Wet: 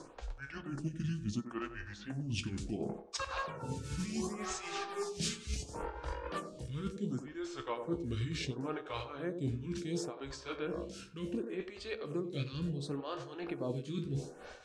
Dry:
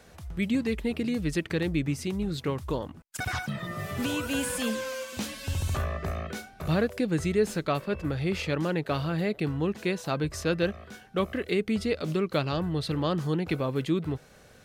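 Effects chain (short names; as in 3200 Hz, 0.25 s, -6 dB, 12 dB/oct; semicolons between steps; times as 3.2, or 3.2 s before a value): gliding pitch shift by -7 st ending unshifted; LPF 8200 Hz 24 dB/oct; bell 80 Hz -7.5 dB 0.27 oct; notch 2000 Hz, Q 11; resonator 69 Hz, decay 0.3 s, harmonics all, mix 60%; tremolo 3.8 Hz, depth 76%; reverse; compressor 8:1, threshold -46 dBFS, peak gain reduction 21.5 dB; reverse; tone controls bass 0 dB, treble +6 dB; on a send: narrowing echo 93 ms, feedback 44%, band-pass 440 Hz, level -6 dB; on the sum: photocell phaser 0.7 Hz; gain +13.5 dB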